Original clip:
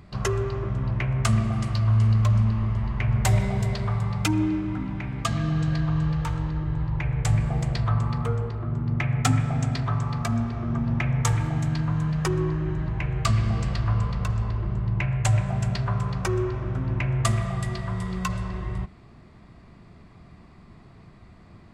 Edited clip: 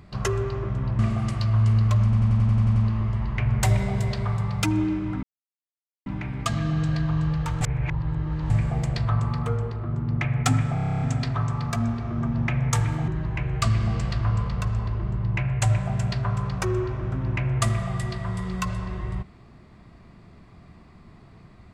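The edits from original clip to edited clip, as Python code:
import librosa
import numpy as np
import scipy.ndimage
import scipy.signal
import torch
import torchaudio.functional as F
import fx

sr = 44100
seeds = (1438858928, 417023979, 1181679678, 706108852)

y = fx.edit(x, sr, fx.cut(start_s=0.99, length_s=0.34),
    fx.stutter(start_s=2.38, slice_s=0.09, count=9),
    fx.insert_silence(at_s=4.85, length_s=0.83),
    fx.reverse_span(start_s=6.4, length_s=0.89),
    fx.stutter(start_s=9.53, slice_s=0.03, count=10),
    fx.cut(start_s=11.6, length_s=1.11), tone=tone)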